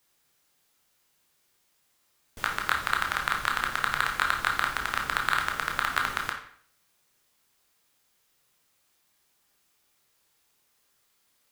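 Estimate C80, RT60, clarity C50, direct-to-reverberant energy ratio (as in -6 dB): 11.0 dB, 0.55 s, 7.0 dB, 1.5 dB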